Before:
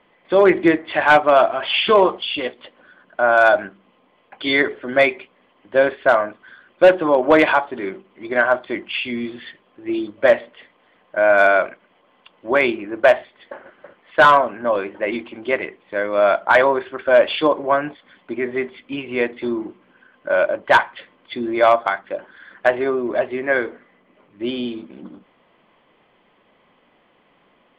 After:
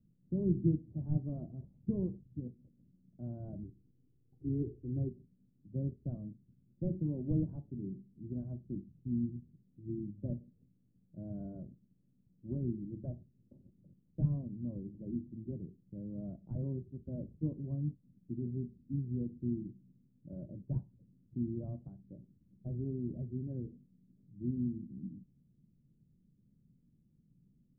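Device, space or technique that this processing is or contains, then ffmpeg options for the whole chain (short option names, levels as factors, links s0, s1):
the neighbour's flat through the wall: -filter_complex "[0:a]lowpass=f=180:w=0.5412,lowpass=f=180:w=1.3066,equalizer=f=130:t=o:w=0.44:g=6,asettb=1/sr,asplit=3[s0][s1][s2];[s0]atrim=end=3.634[s3];[s1]atrim=start=3.63:end=5.09,asetpts=PTS-STARTPTS,afade=t=in:d=0.004:c=qsin,afade=t=out:st=1.456:d=0.004:c=qsin,aecho=1:1:2.5:0.81,atrim=end_sample=64386[s4];[s2]atrim=start=5.086[s5];[s3][s4]acrossfade=d=0.004:c1=hsin:c2=qsin[s6];[s6][s5]acrossfade=d=0.004:c1=qsin:c2=hsin,volume=1.26"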